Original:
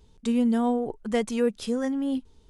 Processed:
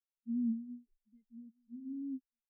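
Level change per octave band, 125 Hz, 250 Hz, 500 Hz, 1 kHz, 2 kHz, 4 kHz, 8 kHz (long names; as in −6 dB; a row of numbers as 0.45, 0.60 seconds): below −10 dB, −13.5 dB, below −40 dB, below −40 dB, below −40 dB, below −40 dB, below −35 dB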